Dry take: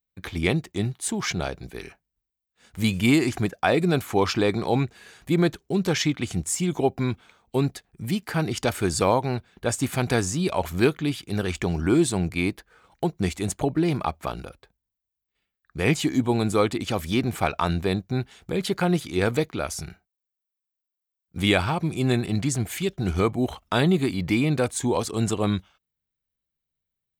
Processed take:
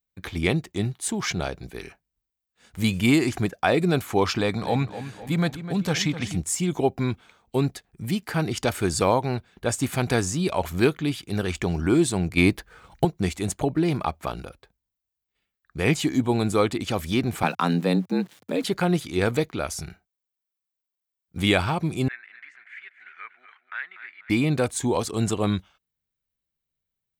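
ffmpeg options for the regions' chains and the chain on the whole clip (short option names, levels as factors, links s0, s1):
-filter_complex "[0:a]asettb=1/sr,asplit=3[s0][s1][s2];[s0]atrim=end=4.384[s3];[s1]atrim=start=4.38:end=6.37,asetpts=PTS-STARTPTS,afade=t=in:d=0.004:c=qsin,afade=t=out:st=1.986:d=0.004:c=qsin,equalizer=f=360:t=o:w=0.26:g=-14.5,asplit=2[s4][s5];[s5]adelay=254,lowpass=f=3900:p=1,volume=0.251,asplit=2[s6][s7];[s7]adelay=254,lowpass=f=3900:p=1,volume=0.53,asplit=2[s8][s9];[s9]adelay=254,lowpass=f=3900:p=1,volume=0.53,asplit=2[s10][s11];[s11]adelay=254,lowpass=f=3900:p=1,volume=0.53,asplit=2[s12][s13];[s13]adelay=254,lowpass=f=3900:p=1,volume=0.53,asplit=2[s14][s15];[s15]adelay=254,lowpass=f=3900:p=1,volume=0.53[s16];[s4][s6][s8][s10][s12][s14][s16]amix=inputs=7:normalize=0,atrim=end_sample=87759[s17];[s2]atrim=start=6.366[s18];[s3][s17]acrossfade=d=0.004:c1=hsin:c2=qsin[s19];[s19][s18]acrossfade=d=0.004:c1=qsin:c2=hsin,asettb=1/sr,asplit=3[s20][s21][s22];[s20]atrim=end=12.374[s23];[s21]atrim=start=12.37:end=13.05,asetpts=PTS-STARTPTS,afade=t=in:d=0.004:c=qsin,afade=t=out:st=0.676:d=0.004:c=qsin,asubboost=boost=7.5:cutoff=220,acontrast=66[s24];[s22]atrim=start=13.046[s25];[s23][s24]acrossfade=d=0.004:c1=hsin:c2=qsin[s26];[s26][s25]acrossfade=d=0.004:c1=qsin:c2=hsin,asettb=1/sr,asplit=3[s27][s28][s29];[s27]atrim=end=17.434[s30];[s28]atrim=start=17.43:end=18.64,asetpts=PTS-STARTPTS,afade=t=in:d=0.004:c=qsin,afade=t=out:st=1.206:d=0.004:c=qsin,equalizer=f=100:t=o:w=0.4:g=9.5,aeval=exprs='val(0)*gte(abs(val(0)),0.00531)':c=same,afreqshift=84[s31];[s29]atrim=start=18.636[s32];[s30][s31]acrossfade=d=0.004:c1=hsin:c2=qsin[s33];[s33][s32]acrossfade=d=0.004:c1=qsin:c2=hsin,asettb=1/sr,asplit=3[s34][s35][s36];[s34]atrim=end=22.084[s37];[s35]atrim=start=22.08:end=24.3,asetpts=PTS-STARTPTS,afade=t=in:d=0.004:c=qsin,afade=t=out:st=2.216:d=0.004:c=qsin,asuperpass=centerf=1800:order=4:qfactor=2.6,aecho=1:1:242|484|726:0.251|0.0829|0.0274,atrim=end_sample=97902[s38];[s36]atrim=start=24.296[s39];[s37][s38]acrossfade=d=0.004:c1=hsin:c2=qsin[s40];[s40][s39]acrossfade=d=0.004:c1=qsin:c2=hsin"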